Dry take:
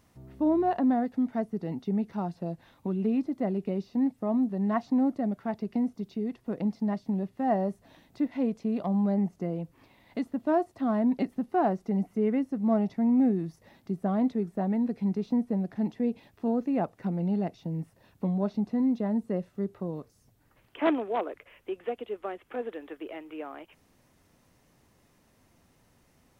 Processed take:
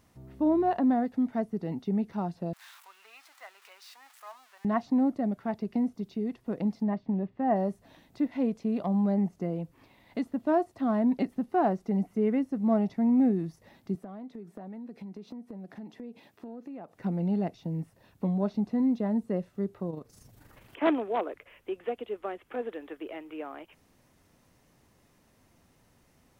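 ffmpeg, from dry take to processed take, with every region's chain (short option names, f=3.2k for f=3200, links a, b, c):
-filter_complex "[0:a]asettb=1/sr,asplit=3[a][b][c];[a]atrim=end=2.534[d];[b]atrim=start=2.53:end=4.65,asetpts=PTS-STARTPTS,afade=t=in:d=0.004:c=qsin,afade=t=out:st=2.116:d=0.004:c=qsin,aeval=exprs='val(0)+0.5*0.00501*sgn(val(0))':c=same,highpass=f=1.1k:w=0.5412,highpass=f=1.1k:w=1.3066[e];[c]atrim=start=4.646[f];[d][e]acrossfade=d=0.004:c1=hsin:c2=qsin[g];[g][f]acrossfade=d=0.004:c1=qsin:c2=hsin,asettb=1/sr,asplit=3[h][i][j];[h]atrim=end=6.834[k];[i]atrim=start=6.83:end=7.56,asetpts=PTS-STARTPTS,afade=t=in:d=0.004:c=qsin,afade=t=out:st=0.726:d=0.004:c=qsin,lowpass=2.5k,bandreject=f=1.4k:w=15[l];[j]atrim=start=7.556[m];[k][l]acrossfade=d=0.004:c1=hsin:c2=qsin[n];[n][m]acrossfade=d=0.004:c1=qsin:c2=hsin,asettb=1/sr,asplit=3[o][p][q];[o]atrim=end=13.954[r];[p]atrim=start=13.95:end=16.95,asetpts=PTS-STARTPTS,afade=t=in:d=0.004:c=qsin,afade=t=out:st=2.996:d=0.004:c=qsin,highpass=180,acompressor=threshold=-39dB:ratio=8:attack=3.2:release=140:knee=1:detection=peak[s];[q]atrim=start=16.946[t];[r][s]acrossfade=d=0.004:c1=hsin:c2=qsin[u];[u][t]acrossfade=d=0.004:c1=qsin:c2=hsin,asettb=1/sr,asplit=3[v][w][x];[v]atrim=end=19.904[y];[w]atrim=start=19.9:end=20.83,asetpts=PTS-STARTPTS,afade=t=in:d=0.004:c=qsin,afade=t=out:st=0.926:d=0.004:c=qsin,acompressor=mode=upward:threshold=-40dB:ratio=2.5:attack=3.2:release=140:knee=2.83:detection=peak,tremolo=f=25:d=0.519[z];[x]atrim=start=20.826[aa];[y][z]acrossfade=d=0.004:c1=hsin:c2=qsin[ab];[ab][aa]acrossfade=d=0.004:c1=qsin:c2=hsin"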